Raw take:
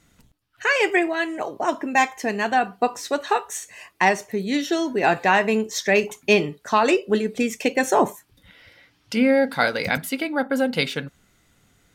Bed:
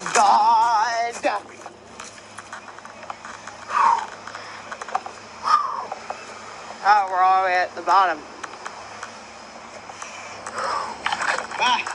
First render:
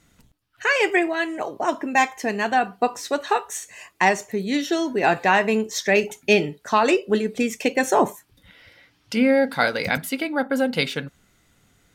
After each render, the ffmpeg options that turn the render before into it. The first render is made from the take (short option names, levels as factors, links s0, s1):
-filter_complex "[0:a]asettb=1/sr,asplit=3[s0][s1][s2];[s0]atrim=end=3.694[s3];[s1]atrim=start=3.69:end=4.33,asetpts=PTS-STARTPTS,afade=t=in:d=0.004:c=qsin,afade=t=out:st=0.636:d=0.004:c=qsin,equalizer=f=7100:w=6.9:g=8[s4];[s2]atrim=start=4.326[s5];[s3][s4]acrossfade=d=0.004:c1=hsin:c2=qsin[s6];[s6][s5]acrossfade=d=0.004:c1=qsin:c2=hsin,asettb=1/sr,asplit=3[s7][s8][s9];[s7]atrim=end=5.964[s10];[s8]atrim=start=5.96:end=6.59,asetpts=PTS-STARTPTS,afade=t=in:d=0.004:c=qsin,afade=t=out:st=0.626:d=0.004:c=qsin,asuperstop=centerf=1100:order=20:qfactor=4.2[s11];[s9]atrim=start=6.586[s12];[s10][s11]acrossfade=d=0.004:c1=hsin:c2=qsin[s13];[s13][s12]acrossfade=d=0.004:c1=qsin:c2=hsin"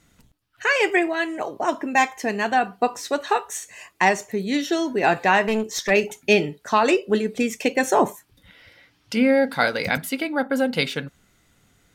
-filter_complex "[0:a]asplit=3[s0][s1][s2];[s0]afade=t=out:st=5.43:d=0.02[s3];[s1]aeval=exprs='clip(val(0),-1,0.0841)':c=same,afade=t=in:st=5.43:d=0.02,afade=t=out:st=5.89:d=0.02[s4];[s2]afade=t=in:st=5.89:d=0.02[s5];[s3][s4][s5]amix=inputs=3:normalize=0"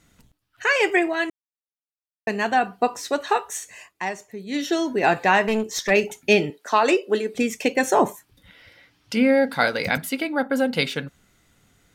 -filter_complex "[0:a]asettb=1/sr,asplit=3[s0][s1][s2];[s0]atrim=end=6.504[s3];[s1]atrim=start=6.5:end=7.35,asetpts=PTS-STARTPTS,afade=t=in:d=0.004:c=qsin,afade=t=out:st=0.846:d=0.004:c=qsin,highpass=f=260:w=0.5412,highpass=f=260:w=1.3066[s4];[s2]atrim=start=7.346[s5];[s3][s4]acrossfade=d=0.004:c1=hsin:c2=qsin[s6];[s6][s5]acrossfade=d=0.004:c1=qsin:c2=hsin,asplit=5[s7][s8][s9][s10][s11];[s7]atrim=end=1.3,asetpts=PTS-STARTPTS,afade=t=out:st=1.296:d=0.004:c=hsin[s12];[s8]atrim=start=1.3:end=2.27,asetpts=PTS-STARTPTS,volume=0[s13];[s9]atrim=start=2.27:end=3.93,asetpts=PTS-STARTPTS,afade=t=in:d=0.004:c=hsin,afade=t=out:st=1.48:d=0.18:silence=0.316228[s14];[s10]atrim=start=3.93:end=4.46,asetpts=PTS-STARTPTS,volume=0.316[s15];[s11]atrim=start=4.46,asetpts=PTS-STARTPTS,afade=t=in:d=0.18:silence=0.316228[s16];[s12][s13][s14][s15][s16]concat=n=5:v=0:a=1"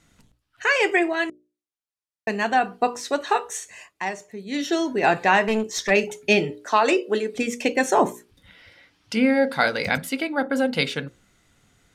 -af "lowpass=11000,bandreject=f=60:t=h:w=6,bandreject=f=120:t=h:w=6,bandreject=f=180:t=h:w=6,bandreject=f=240:t=h:w=6,bandreject=f=300:t=h:w=6,bandreject=f=360:t=h:w=6,bandreject=f=420:t=h:w=6,bandreject=f=480:t=h:w=6,bandreject=f=540:t=h:w=6,bandreject=f=600:t=h:w=6"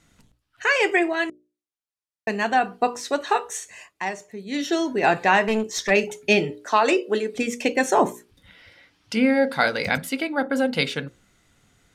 -af anull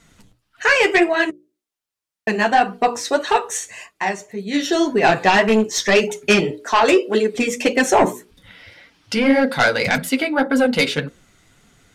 -af "aeval=exprs='0.562*sin(PI/2*2*val(0)/0.562)':c=same,flanger=delay=4.3:depth=6.5:regen=-13:speed=1.8:shape=sinusoidal"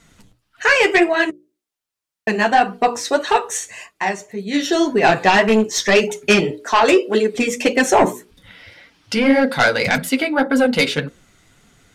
-af "volume=1.12"